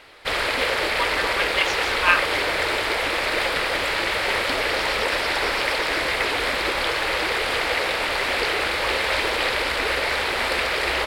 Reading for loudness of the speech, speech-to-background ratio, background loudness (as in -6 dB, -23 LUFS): -24.0 LUFS, -2.5 dB, -21.5 LUFS